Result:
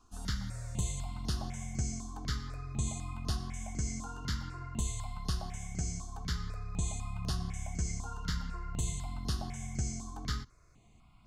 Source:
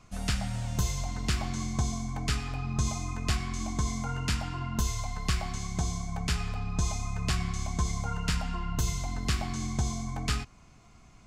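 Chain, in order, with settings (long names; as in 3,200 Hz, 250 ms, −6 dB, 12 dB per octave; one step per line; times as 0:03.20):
dynamic equaliser 8,000 Hz, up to +8 dB, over −56 dBFS, Q 2.3
step-sequenced phaser 4 Hz 570–7,700 Hz
level −5 dB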